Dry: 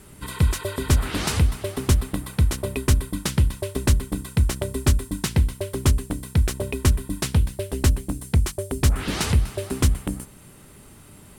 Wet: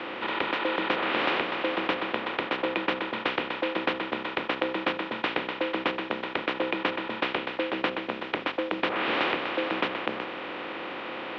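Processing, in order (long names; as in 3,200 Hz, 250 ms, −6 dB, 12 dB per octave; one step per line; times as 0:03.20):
compressor on every frequency bin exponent 0.4
single-sideband voice off tune −70 Hz 430–3,300 Hz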